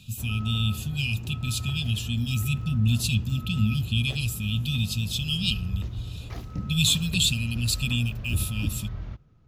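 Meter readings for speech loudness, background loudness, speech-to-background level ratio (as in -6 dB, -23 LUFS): -26.5 LUFS, -35.5 LUFS, 9.0 dB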